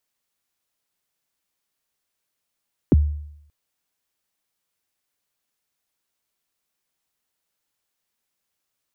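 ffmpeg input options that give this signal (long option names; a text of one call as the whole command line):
ffmpeg -f lavfi -i "aevalsrc='0.376*pow(10,-3*t/0.75)*sin(2*PI*(410*0.026/log(74/410)*(exp(log(74/410)*min(t,0.026)/0.026)-1)+74*max(t-0.026,0)))':duration=0.58:sample_rate=44100" out.wav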